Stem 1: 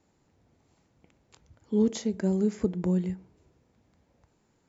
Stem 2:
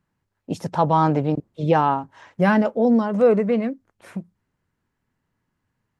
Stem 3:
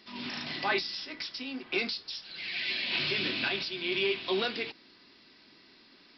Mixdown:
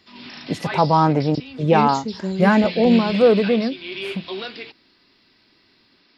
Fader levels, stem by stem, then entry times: +0.5, +2.0, -0.5 dB; 0.00, 0.00, 0.00 s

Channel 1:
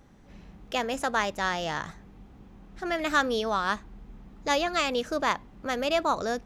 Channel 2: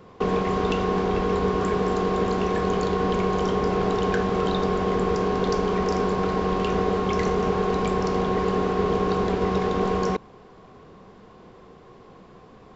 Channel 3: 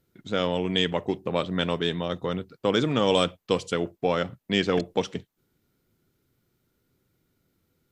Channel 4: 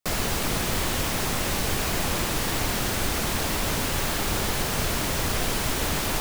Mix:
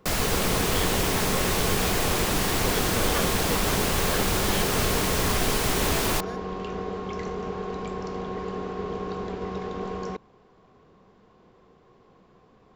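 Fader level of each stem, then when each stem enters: -12.0, -9.0, -10.0, +1.0 dB; 0.00, 0.00, 0.00, 0.00 s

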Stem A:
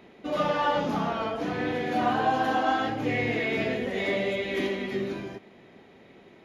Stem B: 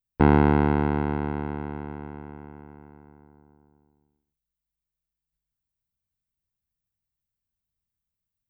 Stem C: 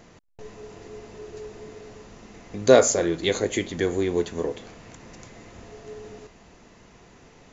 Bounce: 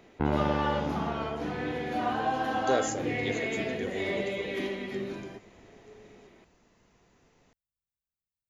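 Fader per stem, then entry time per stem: -4.5, -10.5, -13.0 dB; 0.00, 0.00, 0.00 s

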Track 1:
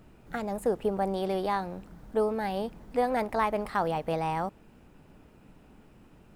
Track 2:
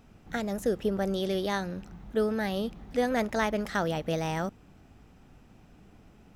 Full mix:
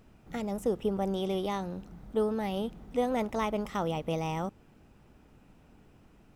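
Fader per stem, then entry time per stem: -5.5, -6.5 dB; 0.00, 0.00 s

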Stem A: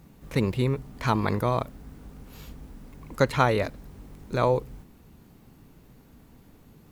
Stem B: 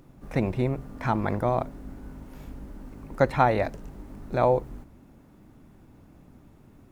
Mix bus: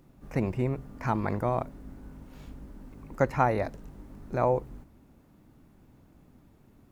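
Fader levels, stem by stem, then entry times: -14.0, -5.5 dB; 0.00, 0.00 s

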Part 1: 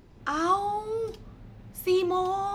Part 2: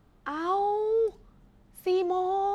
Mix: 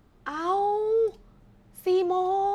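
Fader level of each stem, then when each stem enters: -11.5, +1.0 dB; 0.00, 0.00 s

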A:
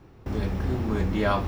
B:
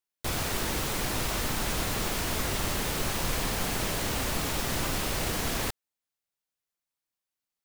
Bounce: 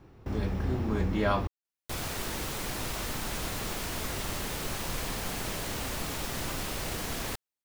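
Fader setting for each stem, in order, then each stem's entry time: -3.0, -4.5 dB; 0.00, 1.65 s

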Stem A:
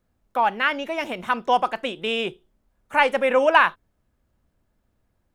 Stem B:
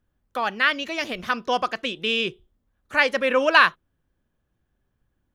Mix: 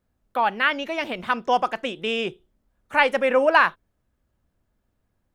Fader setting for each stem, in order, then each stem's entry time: -3.0, -9.0 dB; 0.00, 0.00 s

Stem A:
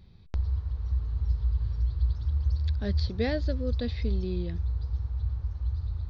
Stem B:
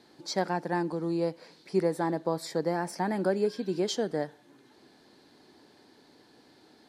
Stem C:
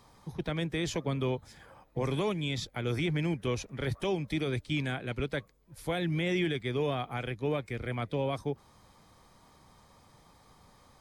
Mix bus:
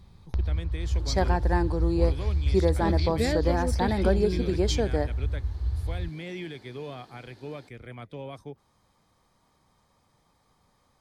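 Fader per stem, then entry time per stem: +1.5, +2.5, -7.5 dB; 0.00, 0.80, 0.00 s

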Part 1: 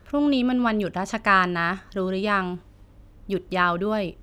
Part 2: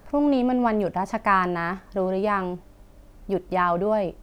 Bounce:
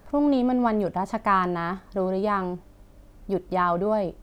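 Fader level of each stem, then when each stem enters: -15.0, -2.0 dB; 0.00, 0.00 s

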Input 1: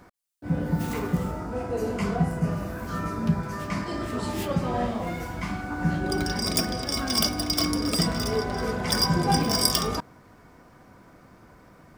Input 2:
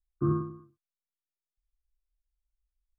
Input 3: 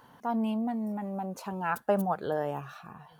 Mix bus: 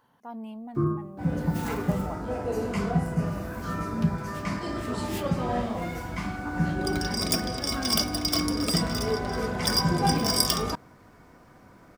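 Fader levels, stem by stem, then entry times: -1.0, +1.5, -9.5 dB; 0.75, 0.55, 0.00 s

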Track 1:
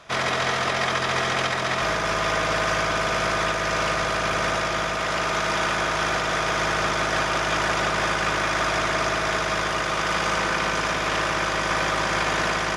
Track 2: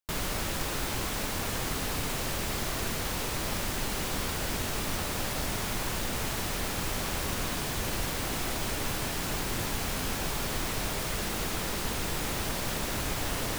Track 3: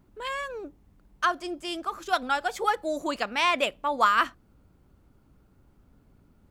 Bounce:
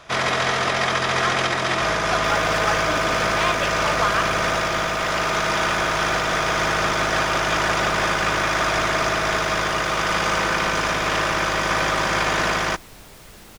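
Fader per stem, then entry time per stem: +2.5, -12.0, -2.0 dB; 0.00, 2.15, 0.00 s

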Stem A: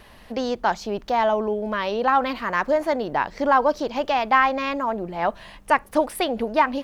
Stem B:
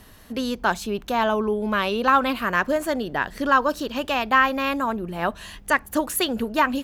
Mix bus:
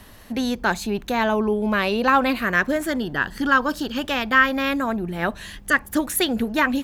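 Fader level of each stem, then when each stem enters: -4.5, +1.5 dB; 0.00, 0.00 s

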